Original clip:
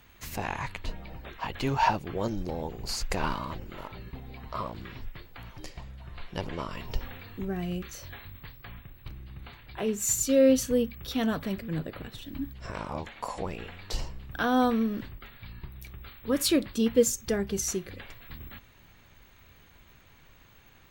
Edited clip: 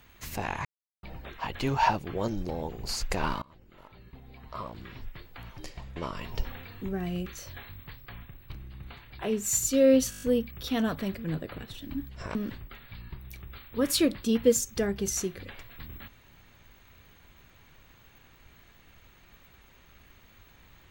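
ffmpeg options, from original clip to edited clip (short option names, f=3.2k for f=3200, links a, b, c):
-filter_complex "[0:a]asplit=12[a][b][c][d][e][f][g][h][i][j][k][l];[a]atrim=end=0.65,asetpts=PTS-STARTPTS,afade=t=out:st=0.646:d=0.004:c=hsin[m];[b]atrim=start=0.65:end=1.03,asetpts=PTS-STARTPTS,volume=0[n];[c]atrim=start=1.03:end=3.42,asetpts=PTS-STARTPTS,afade=t=in:d=0.004:c=hsin,afade=t=out:st=2.386:d=0.004:c=hsin:silence=0.0630957[o];[d]atrim=start=3.42:end=5.962,asetpts=PTS-STARTPTS,afade=t=in:d=1.96:silence=0.0630957[p];[e]atrim=start=6.518:end=10.682[q];[f]atrim=start=10.658:end=10.682[r];[g]atrim=start=10.658:end=10.682[s];[h]atrim=start=10.658:end=10.682[t];[i]atrim=start=10.658:end=10.682[u];[j]atrim=start=10.658:end=10.682[v];[k]atrim=start=10.658:end=12.792[w];[l]atrim=start=14.858[x];[m][n][o][p]concat=n=4:v=0:a=1[y];[y][q]acrossfade=d=0.004:c1=hsin:c2=hsin[z];[z][r]acrossfade=d=0.004:c1=hsin:c2=hsin[aa];[aa][s]acrossfade=d=0.004:c1=hsin:c2=hsin[ab];[ab][t]acrossfade=d=0.004:c1=hsin:c2=hsin[ac];[ac][u]acrossfade=d=0.004:c1=hsin:c2=hsin[ad];[ad][v]acrossfade=d=0.004:c1=hsin:c2=hsin[ae];[ae][w]acrossfade=d=0.004:c1=hsin:c2=hsin[af];[af][x]acrossfade=d=0.004:c1=hsin:c2=hsin"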